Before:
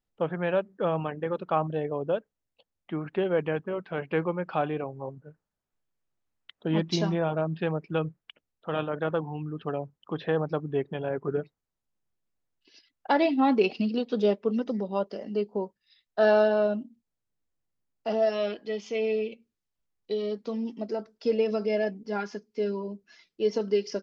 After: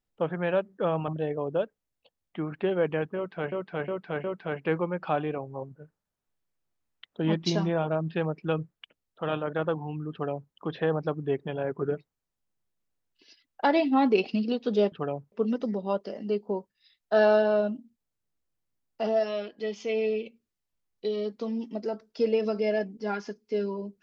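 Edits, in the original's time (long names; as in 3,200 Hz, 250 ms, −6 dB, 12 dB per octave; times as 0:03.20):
0:01.08–0:01.62: remove
0:03.70–0:04.06: repeat, 4 plays
0:09.58–0:09.98: duplicate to 0:14.38
0:18.15–0:18.64: fade out, to −7.5 dB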